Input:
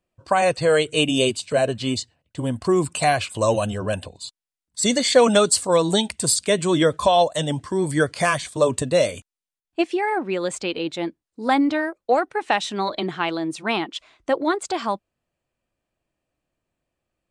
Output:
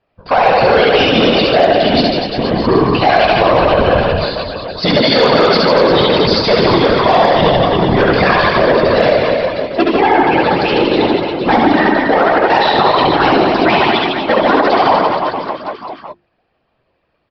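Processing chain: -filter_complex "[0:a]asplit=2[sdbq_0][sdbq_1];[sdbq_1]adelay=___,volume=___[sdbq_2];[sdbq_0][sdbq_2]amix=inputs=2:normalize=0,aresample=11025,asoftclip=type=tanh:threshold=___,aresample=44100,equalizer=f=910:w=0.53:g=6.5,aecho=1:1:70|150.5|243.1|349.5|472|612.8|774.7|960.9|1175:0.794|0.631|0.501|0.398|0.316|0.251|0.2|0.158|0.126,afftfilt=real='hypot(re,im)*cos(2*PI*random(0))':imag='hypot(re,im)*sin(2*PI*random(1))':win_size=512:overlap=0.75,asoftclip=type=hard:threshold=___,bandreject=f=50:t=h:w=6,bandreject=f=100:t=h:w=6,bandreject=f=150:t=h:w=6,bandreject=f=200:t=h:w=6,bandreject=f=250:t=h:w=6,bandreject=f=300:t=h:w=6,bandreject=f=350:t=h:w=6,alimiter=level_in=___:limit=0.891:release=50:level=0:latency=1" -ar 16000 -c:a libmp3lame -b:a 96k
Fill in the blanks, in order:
12, 0.447, 0.119, 0.266, 5.62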